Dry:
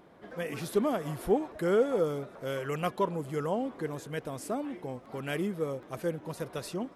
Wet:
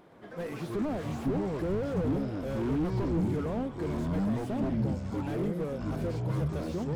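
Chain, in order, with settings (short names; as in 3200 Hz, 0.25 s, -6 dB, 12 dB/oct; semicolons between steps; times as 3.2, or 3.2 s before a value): echoes that change speed 0.122 s, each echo -7 st, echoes 3; slew limiter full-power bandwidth 14 Hz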